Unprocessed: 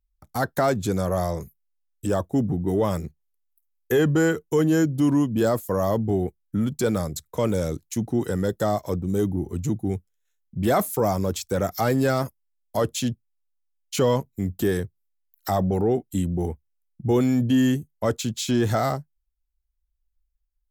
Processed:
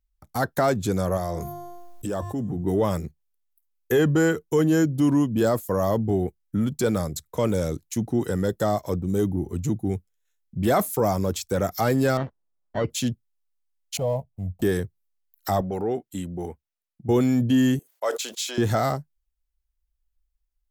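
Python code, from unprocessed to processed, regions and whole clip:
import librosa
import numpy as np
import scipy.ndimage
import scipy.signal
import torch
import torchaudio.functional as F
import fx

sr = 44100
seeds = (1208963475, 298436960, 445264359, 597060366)

y = fx.chain(x, sr, fx.hum_notches(base_hz=50, count=3),
    fx.comb_fb(f0_hz=350.0, decay_s=0.81, harmonics='all', damping=0.0, mix_pct=60),
    fx.env_flatten(amount_pct=70), at=(1.17, 2.64))
y = fx.chain(y, sr, fx.sample_hold(seeds[0], rate_hz=2500.0, jitter_pct=0),
    fx.spacing_loss(db_at_10k=43), at=(12.17, 12.9))
y = fx.chain(y, sr, fx.median_filter(points=25),
    fx.curve_eq(hz=(100.0, 180.0, 360.0, 650.0, 1500.0, 2600.0, 6000.0, 11000.0), db=(0, -7, -20, 5, -23, -15, -16, -5)), at=(13.97, 14.62))
y = fx.chain(y, sr, fx.lowpass(hz=1800.0, slope=6),
    fx.tilt_eq(slope=3.0), at=(15.61, 17.09))
y = fx.chain(y, sr, fx.highpass(hz=490.0, slope=24),
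    fx.sustainer(db_per_s=95.0), at=(17.79, 18.58))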